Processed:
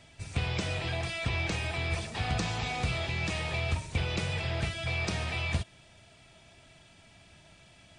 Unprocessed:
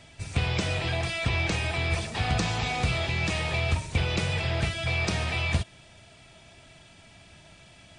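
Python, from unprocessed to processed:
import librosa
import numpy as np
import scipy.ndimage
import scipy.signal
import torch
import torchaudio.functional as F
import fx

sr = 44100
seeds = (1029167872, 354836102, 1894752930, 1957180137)

y = fx.dmg_crackle(x, sr, seeds[0], per_s=fx.line((1.42, 140.0), (1.92, 54.0)), level_db=-44.0, at=(1.42, 1.92), fade=0.02)
y = F.gain(torch.from_numpy(y), -4.5).numpy()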